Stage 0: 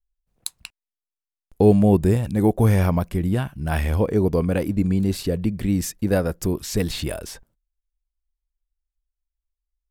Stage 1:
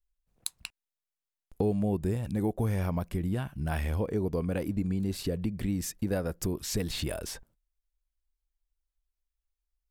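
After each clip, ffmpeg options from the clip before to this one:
-af "acompressor=threshold=-28dB:ratio=2.5,volume=-2dB"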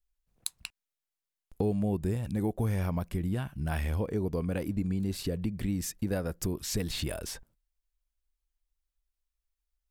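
-af "equalizer=f=540:w=0.59:g=-2"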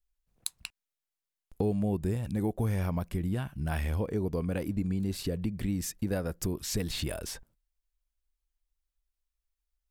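-af anull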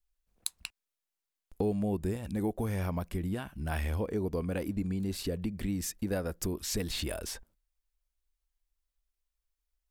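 -af "equalizer=f=130:t=o:w=0.55:g=-10.5"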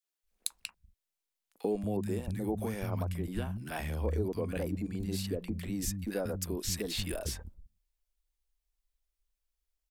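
-filter_complex "[0:a]acrossover=split=190|1300[a][b][c];[b]adelay=40[d];[a]adelay=230[e];[e][d][c]amix=inputs=3:normalize=0"

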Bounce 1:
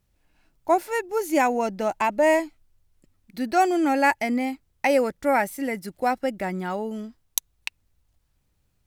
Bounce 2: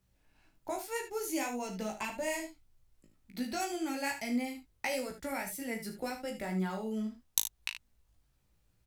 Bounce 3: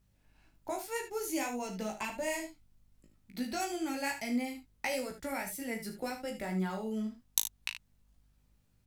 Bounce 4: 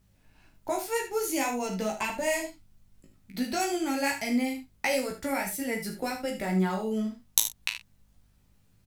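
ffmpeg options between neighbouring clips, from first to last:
-filter_complex "[0:a]acrossover=split=150|3000[a][b][c];[b]acompressor=threshold=-34dB:ratio=6[d];[a][d][c]amix=inputs=3:normalize=0,flanger=delay=15.5:depth=3.1:speed=1.8,aecho=1:1:37|75:0.335|0.299"
-af "aeval=exprs='val(0)+0.000316*(sin(2*PI*50*n/s)+sin(2*PI*2*50*n/s)/2+sin(2*PI*3*50*n/s)/3+sin(2*PI*4*50*n/s)/4+sin(2*PI*5*50*n/s)/5)':c=same"
-af "aecho=1:1:11|46:0.355|0.224,volume=6dB"

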